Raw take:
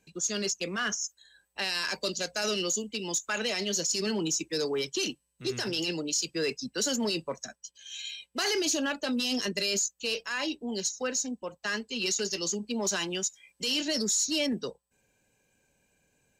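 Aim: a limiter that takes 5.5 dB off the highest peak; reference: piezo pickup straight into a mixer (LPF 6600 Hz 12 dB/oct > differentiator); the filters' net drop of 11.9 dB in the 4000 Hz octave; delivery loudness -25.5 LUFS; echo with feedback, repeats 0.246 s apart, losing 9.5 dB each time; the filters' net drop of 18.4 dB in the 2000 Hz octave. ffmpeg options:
-af "equalizer=f=2k:t=o:g=-8.5,equalizer=f=4k:t=o:g=-6.5,alimiter=level_in=4dB:limit=-24dB:level=0:latency=1,volume=-4dB,lowpass=6.6k,aderivative,aecho=1:1:246|492|738|984:0.335|0.111|0.0365|0.012,volume=17.5dB"

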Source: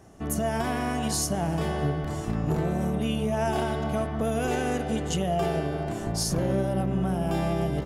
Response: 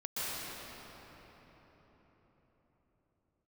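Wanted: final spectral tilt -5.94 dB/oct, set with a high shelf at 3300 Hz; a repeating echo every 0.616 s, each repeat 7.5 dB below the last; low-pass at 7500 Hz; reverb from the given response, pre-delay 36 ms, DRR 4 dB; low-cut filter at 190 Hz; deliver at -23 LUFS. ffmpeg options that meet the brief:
-filter_complex "[0:a]highpass=190,lowpass=7.5k,highshelf=f=3.3k:g=-7.5,aecho=1:1:616|1232|1848|2464|3080:0.422|0.177|0.0744|0.0312|0.0131,asplit=2[a][b];[1:a]atrim=start_sample=2205,adelay=36[c];[b][c]afir=irnorm=-1:irlink=0,volume=-10dB[d];[a][d]amix=inputs=2:normalize=0,volume=4.5dB"

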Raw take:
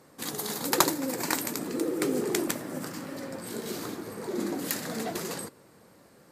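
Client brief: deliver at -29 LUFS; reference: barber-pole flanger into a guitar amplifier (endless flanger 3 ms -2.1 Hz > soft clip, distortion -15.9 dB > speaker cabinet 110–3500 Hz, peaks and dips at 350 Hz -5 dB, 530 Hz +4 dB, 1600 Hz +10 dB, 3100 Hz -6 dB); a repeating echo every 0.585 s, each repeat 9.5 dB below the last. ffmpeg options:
-filter_complex "[0:a]aecho=1:1:585|1170|1755|2340:0.335|0.111|0.0365|0.012,asplit=2[a][b];[b]adelay=3,afreqshift=-2.1[c];[a][c]amix=inputs=2:normalize=1,asoftclip=threshold=-19dB,highpass=110,equalizer=f=350:t=q:w=4:g=-5,equalizer=f=530:t=q:w=4:g=4,equalizer=f=1.6k:t=q:w=4:g=10,equalizer=f=3.1k:t=q:w=4:g=-6,lowpass=f=3.5k:w=0.5412,lowpass=f=3.5k:w=1.3066,volume=6.5dB"

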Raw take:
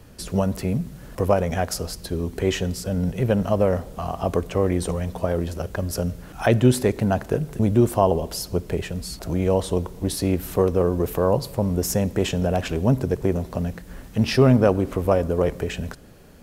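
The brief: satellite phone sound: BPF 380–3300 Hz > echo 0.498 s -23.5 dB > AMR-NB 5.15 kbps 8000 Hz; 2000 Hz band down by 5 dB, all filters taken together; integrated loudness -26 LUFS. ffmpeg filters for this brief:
-af "highpass=380,lowpass=3.3k,equalizer=f=2k:t=o:g=-6,aecho=1:1:498:0.0668,volume=2.5dB" -ar 8000 -c:a libopencore_amrnb -b:a 5150

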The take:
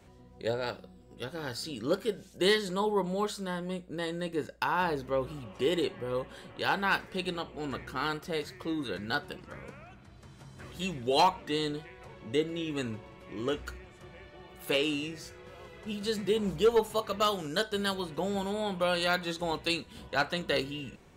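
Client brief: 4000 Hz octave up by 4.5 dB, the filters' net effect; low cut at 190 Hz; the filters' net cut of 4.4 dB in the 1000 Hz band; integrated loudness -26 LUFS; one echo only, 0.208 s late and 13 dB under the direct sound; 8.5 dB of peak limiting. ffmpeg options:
-af "highpass=190,equalizer=f=1k:t=o:g=-6,equalizer=f=4k:t=o:g=6,alimiter=limit=-19dB:level=0:latency=1,aecho=1:1:208:0.224,volume=7.5dB"

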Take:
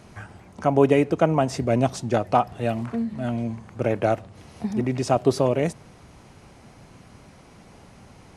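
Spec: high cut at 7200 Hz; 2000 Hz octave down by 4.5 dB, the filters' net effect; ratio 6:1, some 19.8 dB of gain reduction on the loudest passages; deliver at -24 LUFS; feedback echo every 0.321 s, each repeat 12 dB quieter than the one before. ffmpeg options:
-af "lowpass=7.2k,equalizer=f=2k:t=o:g=-6,acompressor=threshold=-36dB:ratio=6,aecho=1:1:321|642|963:0.251|0.0628|0.0157,volume=17dB"

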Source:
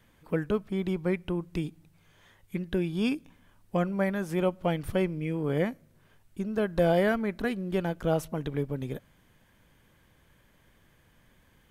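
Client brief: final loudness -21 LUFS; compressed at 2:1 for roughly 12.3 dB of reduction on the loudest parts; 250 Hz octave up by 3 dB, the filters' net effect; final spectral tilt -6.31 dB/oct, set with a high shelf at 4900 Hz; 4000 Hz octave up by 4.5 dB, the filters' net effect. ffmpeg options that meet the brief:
-af "equalizer=f=250:t=o:g=4.5,equalizer=f=4k:t=o:g=4,highshelf=f=4.9k:g=5,acompressor=threshold=-42dB:ratio=2,volume=17.5dB"

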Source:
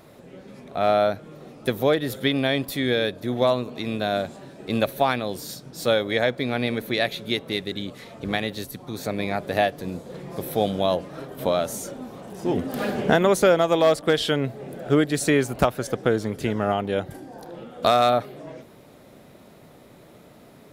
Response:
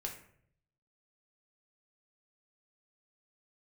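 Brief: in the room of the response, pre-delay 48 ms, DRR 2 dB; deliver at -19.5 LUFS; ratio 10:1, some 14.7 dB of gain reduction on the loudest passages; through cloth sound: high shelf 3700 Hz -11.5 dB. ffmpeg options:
-filter_complex "[0:a]acompressor=threshold=-29dB:ratio=10,asplit=2[a][b];[1:a]atrim=start_sample=2205,adelay=48[c];[b][c]afir=irnorm=-1:irlink=0,volume=-1.5dB[d];[a][d]amix=inputs=2:normalize=0,highshelf=f=3.7k:g=-11.5,volume=14dB"

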